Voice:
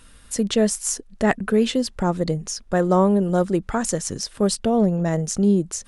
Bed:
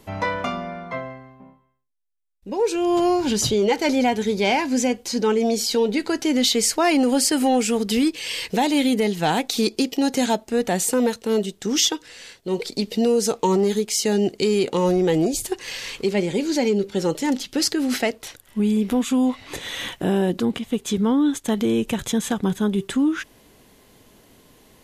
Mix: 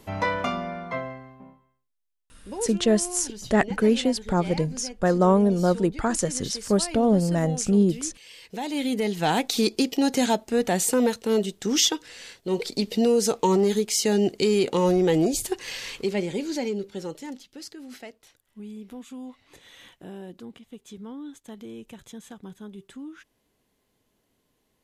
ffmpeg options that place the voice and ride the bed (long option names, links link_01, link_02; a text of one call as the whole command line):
ffmpeg -i stem1.wav -i stem2.wav -filter_complex "[0:a]adelay=2300,volume=-1.5dB[link_01];[1:a]volume=16dB,afade=type=out:start_time=2.05:duration=0.76:silence=0.133352,afade=type=in:start_time=8.42:duration=0.96:silence=0.141254,afade=type=out:start_time=15.4:duration=2.09:silence=0.125893[link_02];[link_01][link_02]amix=inputs=2:normalize=0" out.wav